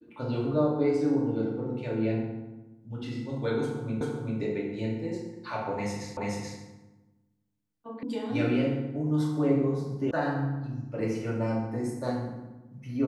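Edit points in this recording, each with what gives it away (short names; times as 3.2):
4.01 repeat of the last 0.39 s
6.17 repeat of the last 0.43 s
8.03 sound cut off
10.11 sound cut off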